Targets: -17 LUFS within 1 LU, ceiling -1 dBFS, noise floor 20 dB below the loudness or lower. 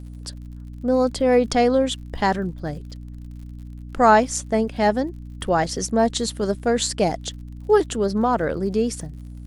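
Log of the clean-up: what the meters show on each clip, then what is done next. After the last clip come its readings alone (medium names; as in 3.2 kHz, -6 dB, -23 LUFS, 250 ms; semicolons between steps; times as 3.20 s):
tick rate 58 per s; hum 60 Hz; highest harmonic 300 Hz; hum level -34 dBFS; loudness -21.0 LUFS; peak level -3.5 dBFS; loudness target -17.0 LUFS
-> de-click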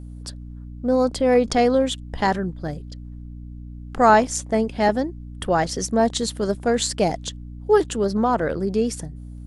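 tick rate 0.11 per s; hum 60 Hz; highest harmonic 300 Hz; hum level -34 dBFS
-> hum notches 60/120/180/240/300 Hz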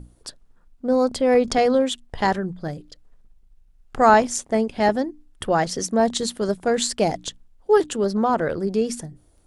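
hum not found; loudness -21.5 LUFS; peak level -3.5 dBFS; loudness target -17.0 LUFS
-> trim +4.5 dB; peak limiter -1 dBFS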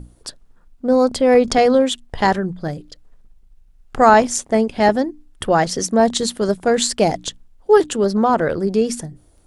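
loudness -17.0 LUFS; peak level -1.0 dBFS; noise floor -52 dBFS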